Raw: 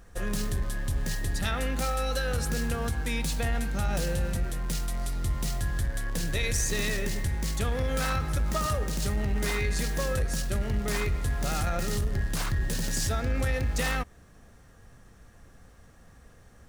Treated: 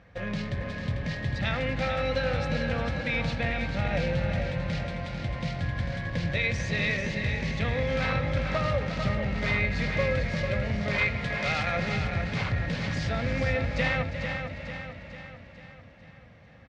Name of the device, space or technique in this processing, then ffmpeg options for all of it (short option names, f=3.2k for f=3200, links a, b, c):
frequency-shifting delay pedal into a guitar cabinet: -filter_complex "[0:a]asettb=1/sr,asplit=3[a][b][c];[a]atrim=end=10.984[d];[b]atrim=start=10.98:end=11.77,asetpts=PTS-STARTPTS,afade=t=in:d=0.004:c=qsin,afade=t=out:st=0.786:d=0.004:c=qsin,tiltshelf=f=660:g=-6.5[e];[c]atrim=start=11.766[f];[d][e]acrossfade=d=0.004:c1=hsin:c2=qsin[g];[g][f]acrossfade=d=0.004:c1=qsin:c2=hsin,asplit=5[h][i][j][k][l];[i]adelay=353,afreqshift=43,volume=-12dB[m];[j]adelay=706,afreqshift=86,volume=-19.3dB[n];[k]adelay=1059,afreqshift=129,volume=-26.7dB[o];[l]adelay=1412,afreqshift=172,volume=-34dB[p];[h][m][n][o][p]amix=inputs=5:normalize=0,highpass=78,equalizer=f=110:t=q:w=4:g=5,equalizer=f=160:t=q:w=4:g=4,equalizer=f=390:t=q:w=4:g=-8,equalizer=f=560:t=q:w=4:g=7,equalizer=f=1.3k:t=q:w=4:g=-3,equalizer=f=2.2k:t=q:w=4:g=9,lowpass=f=4.2k:w=0.5412,lowpass=f=4.2k:w=1.3066,aecho=1:1:446|892|1338|1784|2230|2676:0.447|0.232|0.121|0.0628|0.0327|0.017"